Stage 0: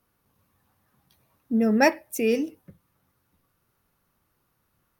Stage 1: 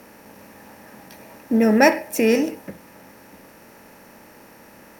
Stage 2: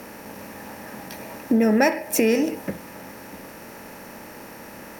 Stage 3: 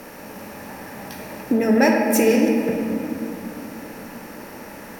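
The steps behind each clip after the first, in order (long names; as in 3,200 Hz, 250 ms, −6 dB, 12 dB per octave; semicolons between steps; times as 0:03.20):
compressor on every frequency bin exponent 0.6; level +3.5 dB
downward compressor 3 to 1, threshold −25 dBFS, peak gain reduction 12 dB; level +6.5 dB
rectangular room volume 150 cubic metres, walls hard, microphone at 0.39 metres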